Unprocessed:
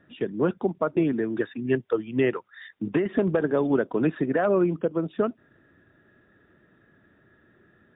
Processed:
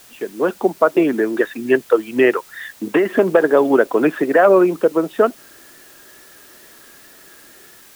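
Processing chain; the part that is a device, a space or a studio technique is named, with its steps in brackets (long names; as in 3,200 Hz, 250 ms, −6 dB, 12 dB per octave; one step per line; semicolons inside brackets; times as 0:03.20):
dictaphone (band-pass filter 390–3,300 Hz; automatic gain control gain up to 9 dB; tape wow and flutter; white noise bed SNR 28 dB)
level +4 dB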